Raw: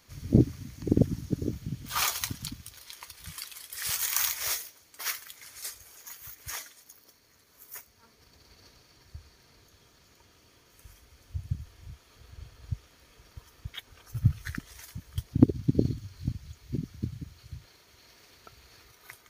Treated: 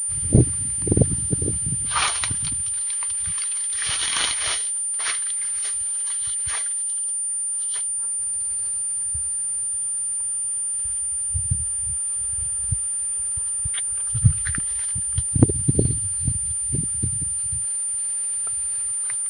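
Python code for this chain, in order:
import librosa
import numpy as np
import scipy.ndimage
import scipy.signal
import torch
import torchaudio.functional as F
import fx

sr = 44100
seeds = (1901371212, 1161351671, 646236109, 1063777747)

y = fx.peak_eq(x, sr, hz=260.0, db=-8.5, octaves=0.82)
y = fx.pwm(y, sr, carrier_hz=9200.0)
y = y * librosa.db_to_amplitude(8.0)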